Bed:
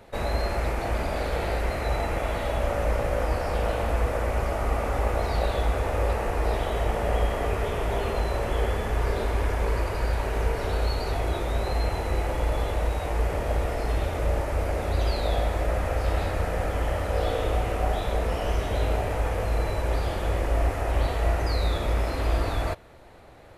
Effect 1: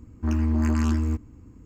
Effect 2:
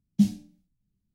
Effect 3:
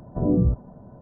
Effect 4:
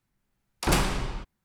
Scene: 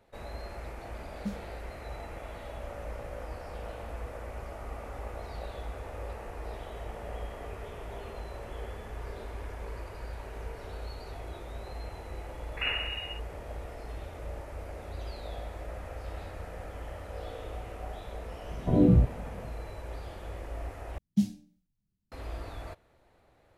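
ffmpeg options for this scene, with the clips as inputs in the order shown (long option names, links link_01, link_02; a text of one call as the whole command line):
ffmpeg -i bed.wav -i cue0.wav -i cue1.wav -i cue2.wav -i cue3.wav -filter_complex "[2:a]asplit=2[link_01][link_02];[0:a]volume=-14.5dB[link_03];[4:a]lowpass=frequency=2500:width_type=q:width=0.5098,lowpass=frequency=2500:width_type=q:width=0.6013,lowpass=frequency=2500:width_type=q:width=0.9,lowpass=frequency=2500:width_type=q:width=2.563,afreqshift=-2900[link_04];[link_03]asplit=2[link_05][link_06];[link_05]atrim=end=20.984[link_07];[link_02]atrim=end=1.14,asetpts=PTS-STARTPTS,volume=-5dB[link_08];[link_06]atrim=start=22.116[link_09];[link_01]atrim=end=1.14,asetpts=PTS-STARTPTS,volume=-15.5dB,afade=type=in:duration=0.004:curve=hsin,afade=type=out:start_time=1.136:duration=0.004:curve=hsin,adelay=1060[link_10];[link_04]atrim=end=1.44,asetpts=PTS-STARTPTS,volume=-8.5dB,afade=type=in:duration=0.004:curve=hsin,afade=type=out:start_time=1.436:duration=0.004:curve=hsin,adelay=11940[link_11];[3:a]atrim=end=1.01,asetpts=PTS-STARTPTS,volume=-0.5dB,afade=type=in:duration=0.004:curve=hsin,afade=type=out:start_time=1.006:duration=0.004:curve=hsin,adelay=18510[link_12];[link_07][link_08]acrossfade=duration=0.004:curve1=hsin:curve2=hsin[link_13];[link_13][link_09]acrossfade=duration=0.004:curve1=hsin:curve2=hsin[link_14];[link_14][link_10][link_11][link_12]amix=inputs=4:normalize=0" out.wav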